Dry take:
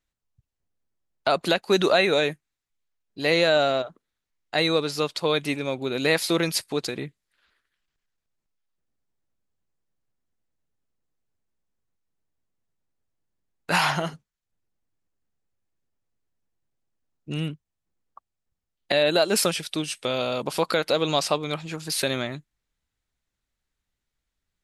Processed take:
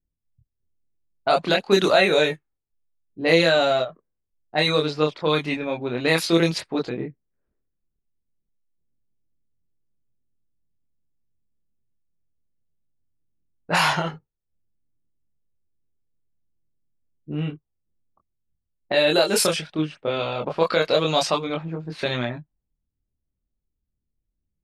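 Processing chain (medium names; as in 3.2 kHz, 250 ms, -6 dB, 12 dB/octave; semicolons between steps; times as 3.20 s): level-controlled noise filter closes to 330 Hz, open at -17.5 dBFS; chorus voices 2, 0.3 Hz, delay 25 ms, depth 1.3 ms; trim +5.5 dB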